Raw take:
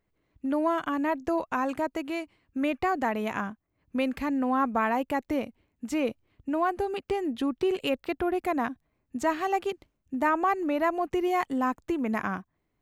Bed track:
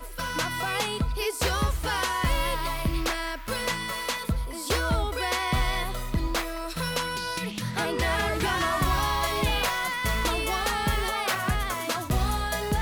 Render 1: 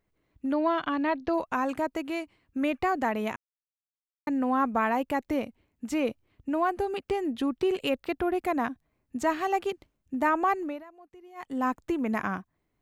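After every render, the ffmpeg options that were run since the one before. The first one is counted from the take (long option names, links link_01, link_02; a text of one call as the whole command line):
ffmpeg -i in.wav -filter_complex "[0:a]asettb=1/sr,asplit=3[link_01][link_02][link_03];[link_01]atrim=end=0.534[link_04];[link_02]atrim=start=0.53:end=1.34,asetpts=PTS-STARTPTS,afade=type=in:duration=0.004:curve=qsin,afade=type=out:start_time=0.806:duration=0.004:curve=qsin,highshelf=frequency=5800:width_type=q:width=3:gain=-12.5[link_05];[link_03]atrim=start=1.336[link_06];[link_04][link_05]acrossfade=duration=0.004:curve1=hsin:curve2=qsin[link_07];[link_07][link_06]acrossfade=duration=0.004:curve1=qsin:curve2=hsin,asplit=5[link_08][link_09][link_10][link_11][link_12];[link_08]atrim=end=3.36,asetpts=PTS-STARTPTS,afade=type=out:start_time=3.356:duration=0.004:curve=hsin[link_13];[link_09]atrim=start=3.36:end=4.27,asetpts=PTS-STARTPTS,volume=0[link_14];[link_10]atrim=start=4.27:end=10.84,asetpts=PTS-STARTPTS,afade=type=in:duration=0.004:curve=hsin,afade=type=out:start_time=6.26:duration=0.31:silence=0.0630957[link_15];[link_11]atrim=start=10.84:end=11.35,asetpts=PTS-STARTPTS,volume=-24dB[link_16];[link_12]atrim=start=11.35,asetpts=PTS-STARTPTS,afade=type=in:duration=0.31:silence=0.0630957[link_17];[link_13][link_14][link_15][link_16][link_17]concat=n=5:v=0:a=1" out.wav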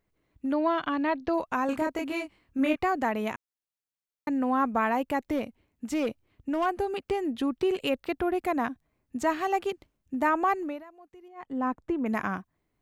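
ffmpeg -i in.wav -filter_complex "[0:a]asettb=1/sr,asplit=3[link_01][link_02][link_03];[link_01]atrim=end=1.664[link_04];[link_02]atrim=start=1.66:end=2.76,asetpts=PTS-STARTPTS,afade=type=in:duration=0.004:curve=qsin,afade=type=out:start_time=1.096:duration=0.004:curve=qsin,asplit=2[link_05][link_06];[link_06]adelay=26,volume=-2.5dB[link_07];[link_05][link_07]amix=inputs=2:normalize=0,atrim=end_sample=48510[link_08];[link_03]atrim=start=2.756[link_09];[link_04][link_08]acrossfade=duration=0.004:curve1=hsin:curve2=qsin[link_10];[link_10][link_09]acrossfade=duration=0.004:curve1=qsin:curve2=hsin,asettb=1/sr,asplit=3[link_11][link_12][link_13];[link_11]atrim=end=5.244[link_14];[link_12]atrim=start=5.24:end=6.66,asetpts=PTS-STARTPTS,afade=type=in:duration=0.004:curve=qsin,afade=type=out:start_time=1.416:duration=0.004:curve=qsin,asoftclip=type=hard:threshold=-22.5dB[link_15];[link_13]atrim=start=6.656[link_16];[link_14][link_15]acrossfade=duration=0.004:curve1=hsin:curve2=qsin[link_17];[link_17][link_16]acrossfade=duration=0.004:curve1=qsin:curve2=hsin,asettb=1/sr,asplit=3[link_18][link_19][link_20];[link_18]atrim=end=11.284[link_21];[link_19]atrim=start=11.28:end=12.06,asetpts=PTS-STARTPTS,afade=type=in:duration=0.004:curve=qsin,afade=type=out:start_time=0.776:duration=0.004:curve=qsin,lowpass=frequency=1300:poles=1[link_22];[link_20]atrim=start=12.056[link_23];[link_21][link_22]acrossfade=duration=0.004:curve1=hsin:curve2=qsin[link_24];[link_24][link_23]acrossfade=duration=0.004:curve1=qsin:curve2=hsin" out.wav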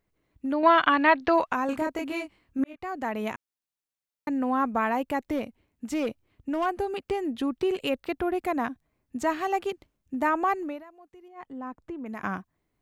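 ffmpeg -i in.wav -filter_complex "[0:a]asettb=1/sr,asplit=3[link_01][link_02][link_03];[link_01]atrim=end=0.634[link_04];[link_02]atrim=start=0.63:end=1.53,asetpts=PTS-STARTPTS,afade=type=in:duration=0.004:curve=qsin,afade=type=out:start_time=0.896:duration=0.004:curve=qsin,equalizer=frequency=1900:width=0.37:gain=12[link_05];[link_03]atrim=start=1.526[link_06];[link_04][link_05]acrossfade=duration=0.004:curve1=hsin:curve2=qsin[link_07];[link_07][link_06]acrossfade=duration=0.004:curve1=qsin:curve2=hsin,asettb=1/sr,asplit=3[link_08][link_09][link_10];[link_08]atrim=end=11.454[link_11];[link_09]atrim=start=11.45:end=12.23,asetpts=PTS-STARTPTS,afade=type=in:duration=0.004:curve=qsin,afade=type=out:start_time=0.776:duration=0.004:curve=qsin,acompressor=threshold=-48dB:ratio=1.5:attack=3.2:release=140:knee=1:detection=peak[link_12];[link_10]atrim=start=12.226[link_13];[link_11][link_12]acrossfade=duration=0.004:curve1=hsin:curve2=qsin[link_14];[link_14][link_13]acrossfade=duration=0.004:curve1=qsin:curve2=hsin,asplit=2[link_15][link_16];[link_15]atrim=end=2.64,asetpts=PTS-STARTPTS,afade=type=out:start_time=2.636:duration=0.004:curve=hsin[link_17];[link_16]atrim=start=2.64,asetpts=PTS-STARTPTS,afade=type=in:duration=0.61[link_18];[link_17][link_18]concat=n=2:v=0:a=1" out.wav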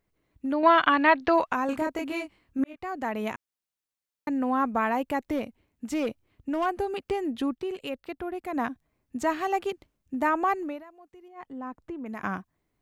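ffmpeg -i in.wav -filter_complex "[0:a]asplit=3[link_01][link_02][link_03];[link_01]atrim=end=7.552[link_04];[link_02]atrim=start=7.548:end=8.532,asetpts=PTS-STARTPTS,volume=-6.5dB[link_05];[link_03]atrim=start=8.528[link_06];[link_04][link_05]acrossfade=duration=0.004:curve1=hsin:curve2=hsin[link_07];[link_07][link_06]acrossfade=duration=0.004:curve1=hsin:curve2=hsin" out.wav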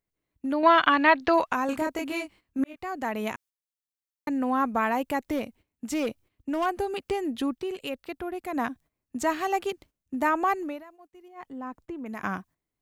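ffmpeg -i in.wav -af "agate=range=-11dB:threshold=-52dB:ratio=16:detection=peak,highshelf=frequency=3900:gain=6.5" out.wav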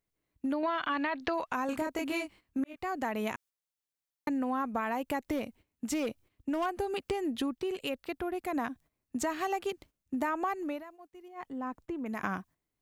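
ffmpeg -i in.wav -af "alimiter=limit=-15.5dB:level=0:latency=1:release=16,acompressor=threshold=-29dB:ratio=5" out.wav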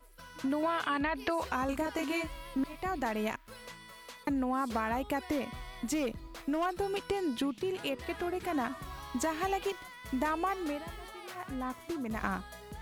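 ffmpeg -i in.wav -i bed.wav -filter_complex "[1:a]volume=-19.5dB[link_01];[0:a][link_01]amix=inputs=2:normalize=0" out.wav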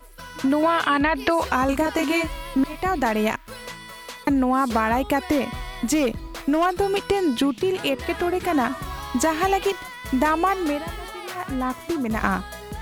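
ffmpeg -i in.wav -af "volume=11.5dB" out.wav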